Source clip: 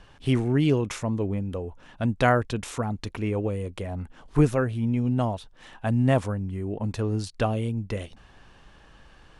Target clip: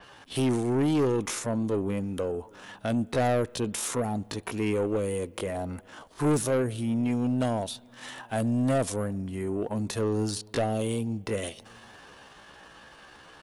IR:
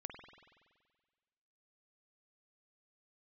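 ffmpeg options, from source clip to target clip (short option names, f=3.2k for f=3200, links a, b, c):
-filter_complex "[0:a]highpass=f=420:p=1,equalizer=f=2.5k:t=o:w=0.62:g=-2.5,acrossover=split=690|2300[a][b][c];[b]acompressor=threshold=-46dB:ratio=8[d];[c]alimiter=level_in=10dB:limit=-24dB:level=0:latency=1:release=123,volume=-10dB[e];[a][d][e]amix=inputs=3:normalize=0,acontrast=69,asoftclip=type=tanh:threshold=-21dB,aexciter=amount=1.3:drive=3:freq=9.9k,atempo=0.7,asplit=2[f][g];[g]adelay=758,volume=-29dB,highshelf=f=4k:g=-17.1[h];[f][h]amix=inputs=2:normalize=0,asplit=2[i][j];[1:a]atrim=start_sample=2205[k];[j][k]afir=irnorm=-1:irlink=0,volume=-15dB[l];[i][l]amix=inputs=2:normalize=0,adynamicequalizer=threshold=0.00251:dfrequency=5000:dqfactor=0.7:tfrequency=5000:tqfactor=0.7:attack=5:release=100:ratio=0.375:range=3:mode=boostabove:tftype=highshelf"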